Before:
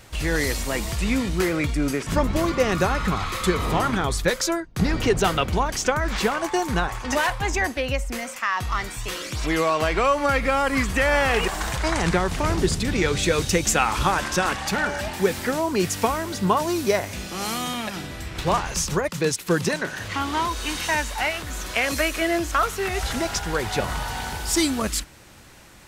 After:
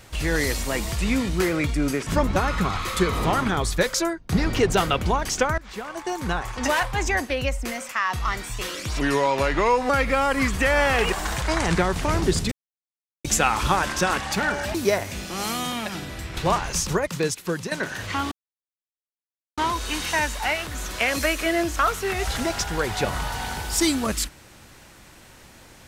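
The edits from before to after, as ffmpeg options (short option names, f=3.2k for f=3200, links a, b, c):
-filter_complex "[0:a]asplit=10[a][b][c][d][e][f][g][h][i][j];[a]atrim=end=2.362[k];[b]atrim=start=2.828:end=6.05,asetpts=PTS-STARTPTS,afade=t=out:st=3.218:d=0.004:c=hsin:silence=0.0794328[l];[c]atrim=start=6.05:end=9.484,asetpts=PTS-STARTPTS,afade=t=in:d=1.04:silence=0.0794328[m];[d]atrim=start=9.48:end=10.25,asetpts=PTS-STARTPTS,asetrate=38367,aresample=44100,atrim=end_sample=39031,asetpts=PTS-STARTPTS[n];[e]atrim=start=10.246:end=12.87,asetpts=PTS-STARTPTS,afade=t=out:st=2.62:d=0.004:c=hsin[o];[f]atrim=start=12.87:end=13.6,asetpts=PTS-STARTPTS,volume=0[p];[g]atrim=start=13.6:end=15.102,asetpts=PTS-STARTPTS,afade=t=in:d=0.004:c=hsin[q];[h]atrim=start=16.758:end=19.73,asetpts=PTS-STARTPTS,afade=t=out:st=2.352:d=0.62:silence=0.316228[r];[i]atrim=start=19.73:end=20.33,asetpts=PTS-STARTPTS,afade=t=in:d=0.004:c=hsin:silence=0.316228,afade=t=out:st=0.596:d=0.004:c=hsin,apad=pad_dur=1.26[s];[j]atrim=start=20.33,asetpts=PTS-STARTPTS,afade=t=in:d=0.004:c=hsin[t];[l][m]concat=n=2:v=0:a=1[u];[k][u]acrossfade=d=0.004:c1=hsin:c2=hsin[v];[v][n]acrossfade=d=0.004:c1=hsin:c2=hsin[w];[o][p][q]concat=n=3:v=0:a=1[x];[w][x]acrossfade=d=0.004:c1=hsin:c2=hsin[y];[r][s][t]concat=n=3:v=0:a=1[z];[y][z]acrossfade=d=0.004:c1=hsin:c2=hsin"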